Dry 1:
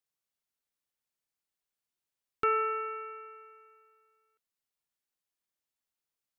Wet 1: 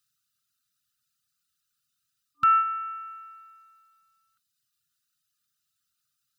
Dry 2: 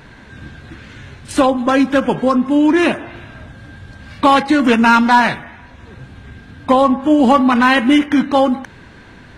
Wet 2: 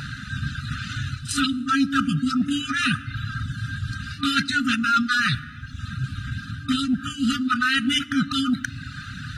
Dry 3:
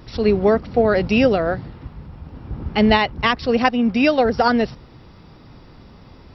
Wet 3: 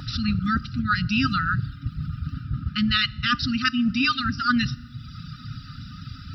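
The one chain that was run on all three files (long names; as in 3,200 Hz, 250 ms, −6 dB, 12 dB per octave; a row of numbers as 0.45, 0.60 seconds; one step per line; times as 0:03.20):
reverb reduction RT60 0.84 s
brick-wall band-stop 280–1,200 Hz
octave-band graphic EQ 125/250/500/1,000/2,000/4,000 Hz +6/−10/+5/+12/−11/+4 dB
reversed playback
downward compressor 5 to 1, threshold −31 dBFS
reversed playback
notch comb filter 1,100 Hz
feedback delay network reverb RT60 1.3 s, low-frequency decay 1.55×, high-frequency decay 0.75×, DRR 19.5 dB
loudness normalisation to −24 LKFS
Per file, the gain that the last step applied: +14.0, +11.5, +12.0 decibels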